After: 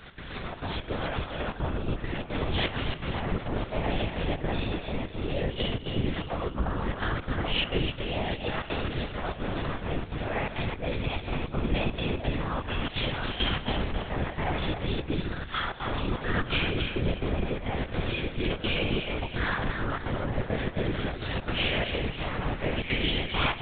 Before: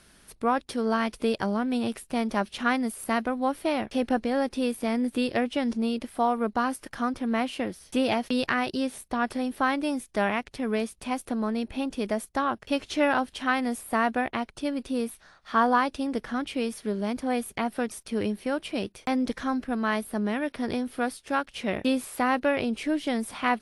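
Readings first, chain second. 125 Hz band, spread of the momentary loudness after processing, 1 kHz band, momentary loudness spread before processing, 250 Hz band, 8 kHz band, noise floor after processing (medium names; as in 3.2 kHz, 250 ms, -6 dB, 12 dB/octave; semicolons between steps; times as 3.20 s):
+13.0 dB, 5 LU, -7.0 dB, 6 LU, -6.5 dB, under -40 dB, -40 dBFS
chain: band-stop 560 Hz, Q 12; compressor with a negative ratio -37 dBFS, ratio -1; peak limiter -23.5 dBFS, peak gain reduction 11 dB; algorithmic reverb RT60 1.2 s, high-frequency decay 0.65×, pre-delay 5 ms, DRR -9.5 dB; trance gate "x.xxxx.x" 169 bpm -12 dB; on a send: thinning echo 273 ms, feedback 43%, high-pass 520 Hz, level -6 dB; on the sum: LPC vocoder at 8 kHz whisper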